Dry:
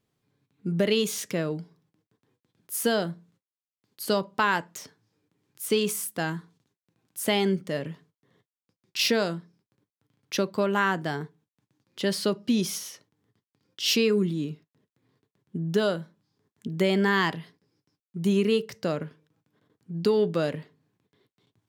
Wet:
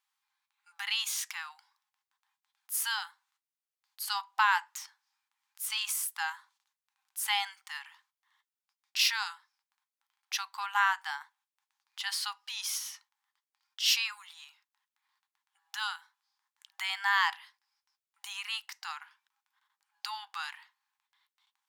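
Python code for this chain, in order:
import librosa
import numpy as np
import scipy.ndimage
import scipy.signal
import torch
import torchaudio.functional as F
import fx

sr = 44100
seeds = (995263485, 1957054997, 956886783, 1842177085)

y = fx.brickwall_highpass(x, sr, low_hz=770.0)
y = F.gain(torch.from_numpy(y), -1.0).numpy()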